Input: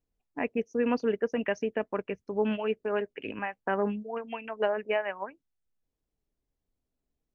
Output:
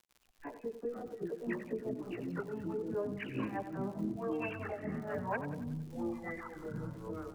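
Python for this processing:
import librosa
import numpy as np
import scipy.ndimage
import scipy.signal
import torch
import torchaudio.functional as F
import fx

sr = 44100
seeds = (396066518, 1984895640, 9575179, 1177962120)

y = fx.recorder_agc(x, sr, target_db=-22.0, rise_db_per_s=40.0, max_gain_db=30)
y = fx.env_lowpass_down(y, sr, base_hz=670.0, full_db=-24.5)
y = fx.level_steps(y, sr, step_db=23)
y = fx.dispersion(y, sr, late='lows', ms=87.0, hz=1900.0)
y = y * (1.0 - 0.87 / 2.0 + 0.87 / 2.0 * np.cos(2.0 * np.pi * 4.7 * (np.arange(len(y)) / sr)))
y = fx.chorus_voices(y, sr, voices=2, hz=0.28, base_ms=16, depth_ms=1.3, mix_pct=65)
y = fx.dmg_crackle(y, sr, seeds[0], per_s=72.0, level_db=-61.0)
y = fx.echo_feedback(y, sr, ms=92, feedback_pct=50, wet_db=-11)
y = fx.echo_pitch(y, sr, ms=357, semitones=-5, count=3, db_per_echo=-3.0)
y = y * librosa.db_to_amplitude(13.0)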